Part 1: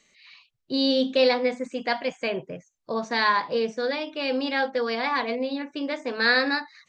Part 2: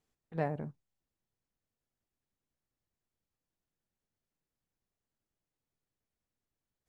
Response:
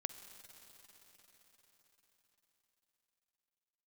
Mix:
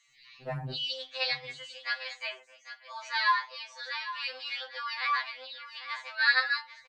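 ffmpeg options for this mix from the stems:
-filter_complex "[0:a]highpass=f=1k:w=0.5412,highpass=f=1k:w=1.3066,volume=-1dB,asplit=3[a][b][c];[b]volume=-13dB[d];[1:a]adelay=100,volume=3dB,asplit=3[e][f][g];[e]atrim=end=2.36,asetpts=PTS-STARTPTS,afade=t=out:st=2.356:d=0.004:c=hsin[h];[f]atrim=start=2.36:end=3.8,asetpts=PTS-STARTPTS,volume=0[i];[g]atrim=start=3.8,asetpts=PTS-STARTPTS,afade=t=in:d=0.004:c=hsin[j];[h][i][j]concat=n=3:v=0:a=1,asplit=2[k][l];[l]volume=-19dB[m];[c]apad=whole_len=307828[n];[k][n]sidechaincompress=threshold=-42dB:ratio=8:attack=48:release=233[o];[d][m]amix=inputs=2:normalize=0,aecho=0:1:799:1[p];[a][o][p]amix=inputs=3:normalize=0,equalizer=f=130:w=7:g=9.5,afftfilt=real='re*2.45*eq(mod(b,6),0)':imag='im*2.45*eq(mod(b,6),0)':win_size=2048:overlap=0.75"

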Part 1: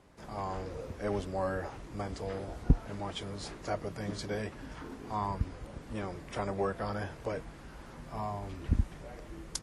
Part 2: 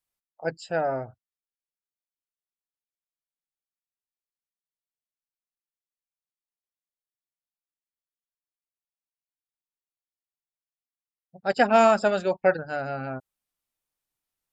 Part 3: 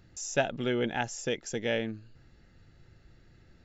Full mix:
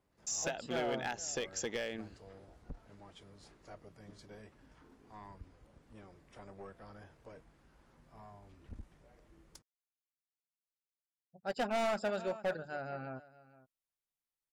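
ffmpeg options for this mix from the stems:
-filter_complex "[0:a]aeval=exprs='(tanh(15.8*val(0)+0.45)-tanh(0.45))/15.8':c=same,volume=-15.5dB[a];[1:a]volume=-11dB,asplit=3[b][c][d];[c]volume=-19dB[e];[2:a]agate=range=-33dB:threshold=-46dB:ratio=3:detection=peak,highpass=f=430:p=1,acompressor=threshold=-35dB:ratio=16,adelay=100,volume=2.5dB[f];[d]apad=whole_len=424348[g];[a][g]sidechaincompress=threshold=-41dB:ratio=8:attack=16:release=1250[h];[e]aecho=0:1:463:1[i];[h][b][f][i]amix=inputs=4:normalize=0,volume=29.5dB,asoftclip=hard,volume=-29.5dB"

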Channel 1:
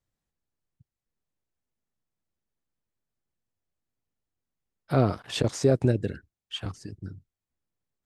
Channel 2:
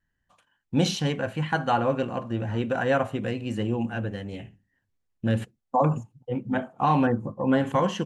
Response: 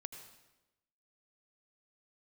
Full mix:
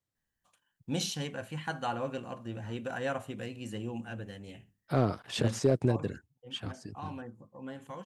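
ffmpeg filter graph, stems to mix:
-filter_complex "[0:a]highpass=83,asoftclip=type=hard:threshold=-12.5dB,volume=-4dB[a];[1:a]crystalizer=i=2.5:c=0,adelay=150,volume=-11dB,afade=t=out:st=5.58:d=0.37:silence=0.316228[b];[a][b]amix=inputs=2:normalize=0"

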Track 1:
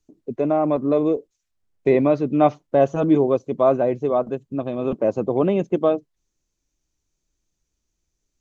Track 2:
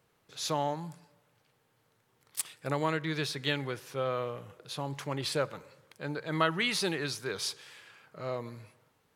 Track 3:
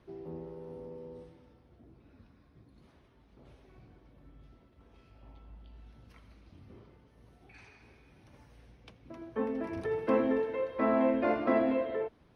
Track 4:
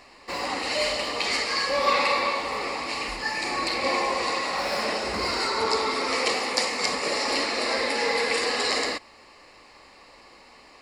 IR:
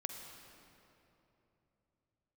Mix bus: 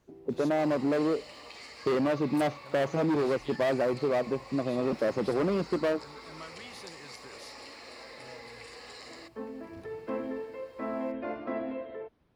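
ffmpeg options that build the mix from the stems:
-filter_complex "[0:a]asoftclip=type=hard:threshold=-18.5dB,highpass=91,acompressor=threshold=-23dB:ratio=3,volume=-2dB[a];[1:a]acompressor=threshold=-54dB:ratio=1.5,volume=-8.5dB[b];[2:a]volume=-7dB[c];[3:a]acompressor=threshold=-30dB:ratio=5,acrusher=bits=8:mix=0:aa=0.5,adelay=300,volume=-14.5dB[d];[a][b][c][d]amix=inputs=4:normalize=0"

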